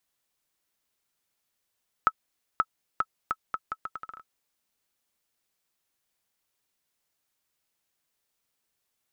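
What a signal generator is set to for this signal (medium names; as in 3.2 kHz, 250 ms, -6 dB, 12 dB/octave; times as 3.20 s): bouncing ball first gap 0.53 s, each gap 0.76, 1.3 kHz, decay 49 ms -8.5 dBFS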